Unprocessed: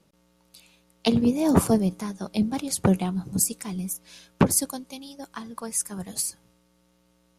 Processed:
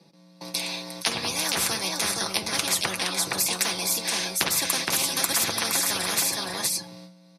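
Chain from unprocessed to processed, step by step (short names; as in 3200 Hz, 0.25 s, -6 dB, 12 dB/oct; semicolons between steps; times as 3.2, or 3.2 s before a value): 3.92–6.21 reverse delay 0.526 s, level 0 dB; gate with hold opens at -51 dBFS; high shelf 11000 Hz -3.5 dB; comb 6 ms, depth 52%; compressor 2.5:1, threshold -29 dBFS, peak gain reduction 12.5 dB; weighting filter A; echo 0.468 s -10 dB; reverb RT60 0.25 s, pre-delay 3 ms, DRR 10 dB; spectral compressor 10:1; gain +6.5 dB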